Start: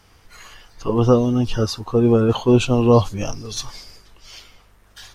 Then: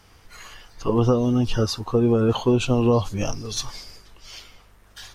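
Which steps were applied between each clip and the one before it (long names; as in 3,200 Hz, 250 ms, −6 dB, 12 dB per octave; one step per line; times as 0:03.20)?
downward compressor, threshold −15 dBFS, peak gain reduction 7 dB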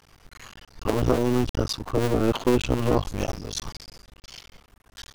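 sub-harmonics by changed cycles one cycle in 2, muted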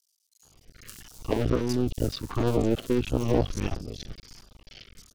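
rotating-speaker cabinet horn 0.9 Hz
auto-filter notch saw down 1.5 Hz 460–2,300 Hz
multiband delay without the direct sound highs, lows 430 ms, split 5,100 Hz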